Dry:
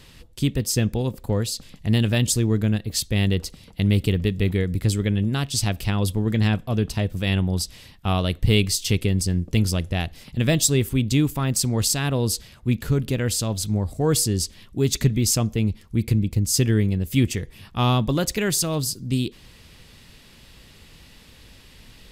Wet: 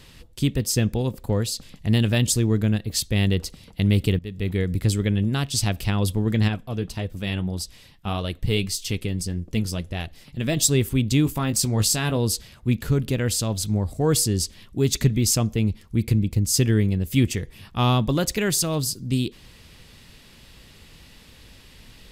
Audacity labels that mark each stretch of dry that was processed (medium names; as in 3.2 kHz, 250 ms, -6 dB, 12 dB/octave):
4.190000	4.660000	fade in, from -20 dB
6.480000	10.570000	flange 1.7 Hz, delay 1.6 ms, depth 5.7 ms, regen +62%
11.240000	12.170000	doubling 19 ms -8.5 dB